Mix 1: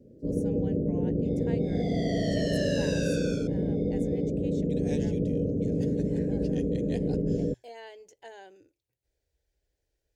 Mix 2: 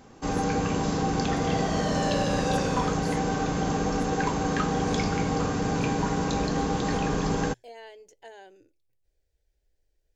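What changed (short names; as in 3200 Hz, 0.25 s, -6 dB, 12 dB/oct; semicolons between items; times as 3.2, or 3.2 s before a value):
first sound: remove steep low-pass 600 Hz 96 dB/oct; second sound: entry -0.50 s; master: remove HPF 50 Hz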